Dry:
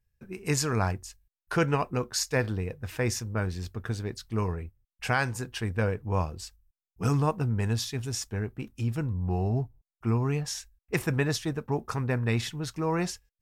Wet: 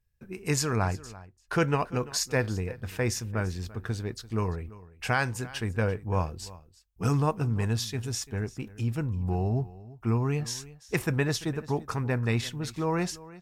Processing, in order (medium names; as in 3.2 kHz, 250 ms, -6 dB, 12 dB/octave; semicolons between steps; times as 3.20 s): 0.76–1.53 s: treble shelf 7.5 kHz -10 dB; delay 341 ms -19 dB